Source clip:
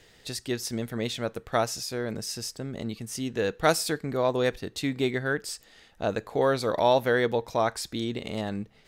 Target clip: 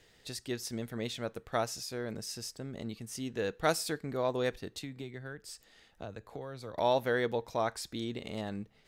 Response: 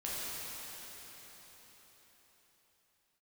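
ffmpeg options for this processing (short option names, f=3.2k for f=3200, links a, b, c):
-filter_complex "[0:a]asettb=1/sr,asplit=3[a][b][c];[a]atrim=end=4.784[d];[b]atrim=start=4.78:end=6.78,asetpts=PTS-STARTPTS,afade=t=in:d=0.004:c=qsin,afade=t=out:st=1.996:d=0.004:c=qsin,acrossover=split=120[e][f];[f]acompressor=threshold=-34dB:ratio=10[g];[e][g]amix=inputs=2:normalize=0[h];[c]atrim=start=6.776[i];[d][h]acrossfade=d=0.004:c1=hsin:c2=qsin[j];[j][i]acrossfade=d=0.004:c1=qsin:c2=hsin,volume=-6.5dB"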